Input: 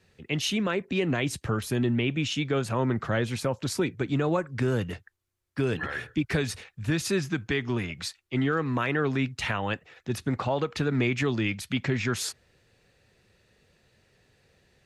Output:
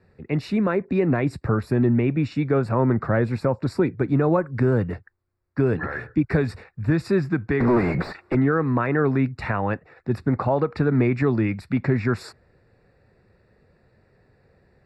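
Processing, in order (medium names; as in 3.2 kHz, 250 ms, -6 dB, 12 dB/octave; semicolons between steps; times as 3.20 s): 7.60–8.35 s: overdrive pedal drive 39 dB, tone 1 kHz, clips at -16.5 dBFS; boxcar filter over 14 samples; trim +6.5 dB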